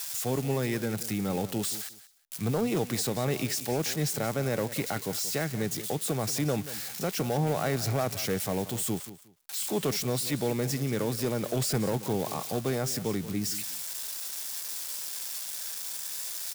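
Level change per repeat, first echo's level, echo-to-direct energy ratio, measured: -13.5 dB, -15.0 dB, -15.0 dB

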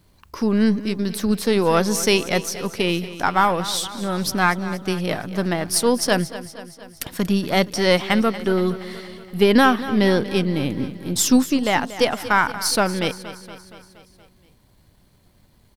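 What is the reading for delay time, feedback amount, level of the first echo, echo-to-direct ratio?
235 ms, 60%, -15.0 dB, -13.0 dB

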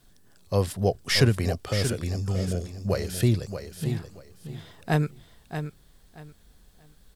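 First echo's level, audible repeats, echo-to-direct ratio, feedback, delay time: -9.0 dB, 2, -9.0 dB, 22%, 629 ms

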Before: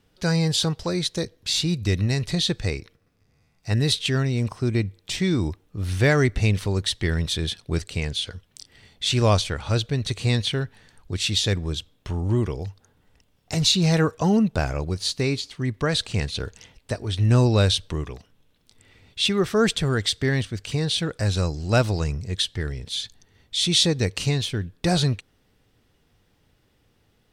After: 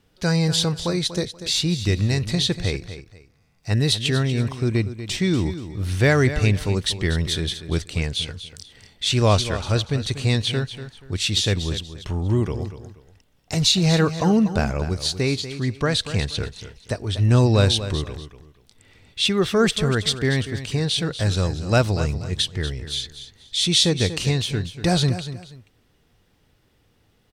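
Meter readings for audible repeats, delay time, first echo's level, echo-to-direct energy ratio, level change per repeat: 2, 240 ms, -12.0 dB, -11.5 dB, -11.5 dB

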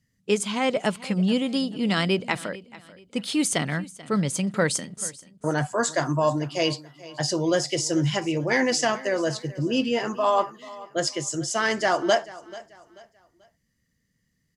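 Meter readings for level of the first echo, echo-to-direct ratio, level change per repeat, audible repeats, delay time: -19.0 dB, -18.5 dB, -9.5 dB, 2, 437 ms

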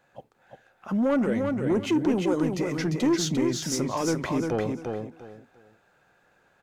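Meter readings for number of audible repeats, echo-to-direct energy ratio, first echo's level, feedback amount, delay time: 3, -4.5 dB, -4.5 dB, 23%, 348 ms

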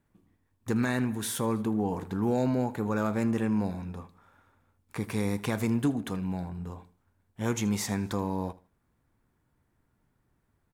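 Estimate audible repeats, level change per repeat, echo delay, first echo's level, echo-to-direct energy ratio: 2, -12.0 dB, 79 ms, -19.5 dB, -19.0 dB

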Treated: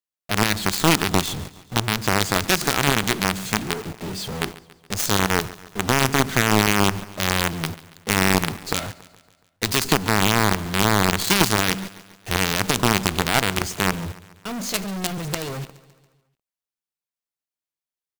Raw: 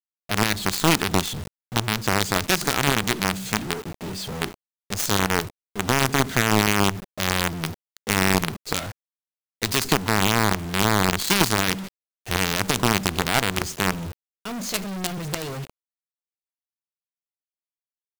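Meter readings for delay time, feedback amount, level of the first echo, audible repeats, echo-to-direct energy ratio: 140 ms, 55%, -19.0 dB, 4, -17.5 dB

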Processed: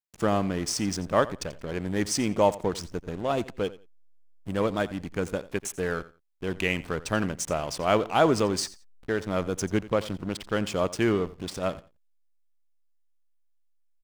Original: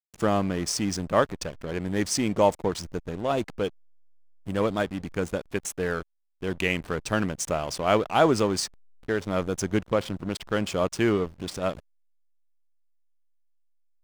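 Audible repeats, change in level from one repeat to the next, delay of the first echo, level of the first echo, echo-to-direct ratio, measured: 2, -14.0 dB, 87 ms, -18.0 dB, -18.0 dB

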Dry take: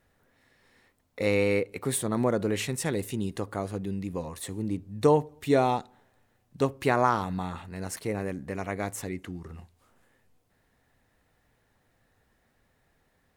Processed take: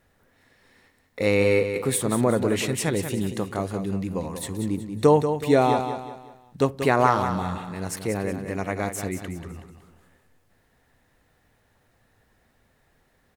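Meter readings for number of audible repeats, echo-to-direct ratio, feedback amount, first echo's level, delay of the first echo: 4, -8.0 dB, 38%, -8.5 dB, 186 ms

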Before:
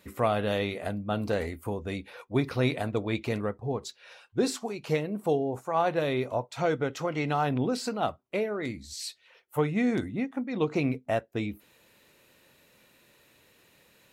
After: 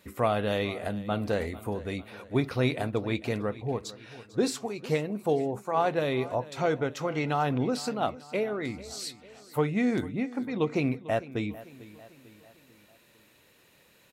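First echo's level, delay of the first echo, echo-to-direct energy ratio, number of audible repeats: -18.0 dB, 447 ms, -16.5 dB, 3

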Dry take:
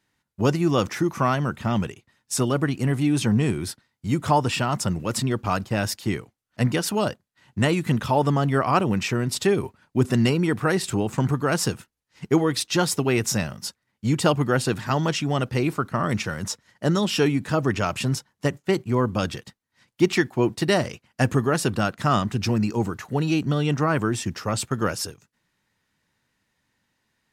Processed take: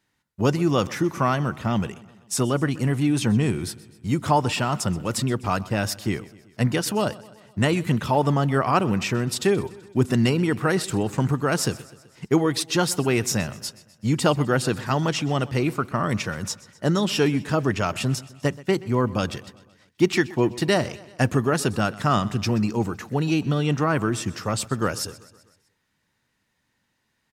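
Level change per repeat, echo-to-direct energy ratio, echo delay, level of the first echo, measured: -5.0 dB, -18.5 dB, 127 ms, -20.0 dB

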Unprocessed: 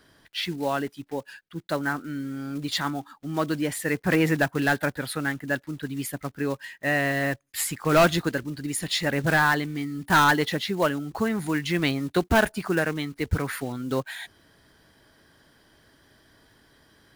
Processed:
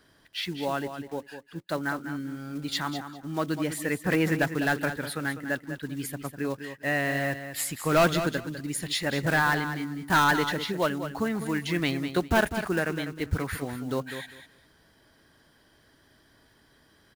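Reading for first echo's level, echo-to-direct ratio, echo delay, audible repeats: -10.0 dB, -10.0 dB, 200 ms, 2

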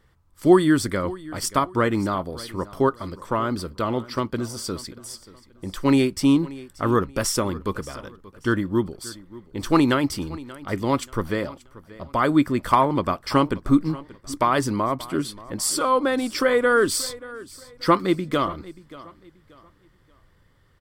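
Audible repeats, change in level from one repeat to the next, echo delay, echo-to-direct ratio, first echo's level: 2, -10.0 dB, 582 ms, -18.5 dB, -19.0 dB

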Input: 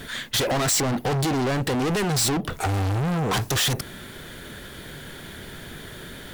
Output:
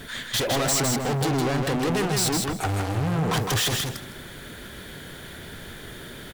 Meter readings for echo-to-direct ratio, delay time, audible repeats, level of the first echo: -4.0 dB, 159 ms, 3, -4.0 dB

